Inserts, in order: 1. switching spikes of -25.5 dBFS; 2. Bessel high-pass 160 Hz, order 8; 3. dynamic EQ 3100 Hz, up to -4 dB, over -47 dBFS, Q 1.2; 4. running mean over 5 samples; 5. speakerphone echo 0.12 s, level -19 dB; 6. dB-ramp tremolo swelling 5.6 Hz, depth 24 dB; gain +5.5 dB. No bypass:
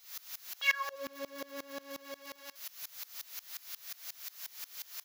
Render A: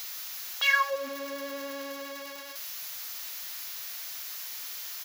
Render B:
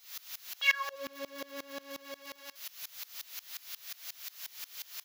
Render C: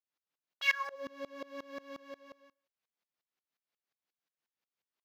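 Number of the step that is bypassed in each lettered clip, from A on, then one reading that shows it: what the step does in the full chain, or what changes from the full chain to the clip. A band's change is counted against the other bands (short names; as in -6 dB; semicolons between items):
6, 1 kHz band +2.5 dB; 3, 4 kHz band +3.0 dB; 1, crest factor change +1.5 dB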